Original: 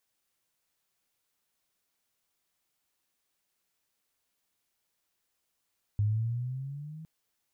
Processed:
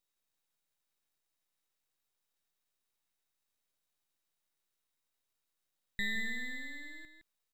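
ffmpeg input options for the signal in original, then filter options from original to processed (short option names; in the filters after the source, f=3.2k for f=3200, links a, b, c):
-f lavfi -i "aevalsrc='pow(10,(-23-18.5*t/1.06)/20)*sin(2*PI*102*1.06/(8*log(2)/12)*(exp(8*log(2)/12*t/1.06)-1))':d=1.06:s=44100"
-filter_complex "[0:a]aeval=exprs='val(0)*sin(2*PI*1900*n/s)':c=same,aeval=exprs='max(val(0),0)':c=same,asplit=2[a][b];[b]adelay=163.3,volume=-8dB,highshelf=f=4k:g=-3.67[c];[a][c]amix=inputs=2:normalize=0"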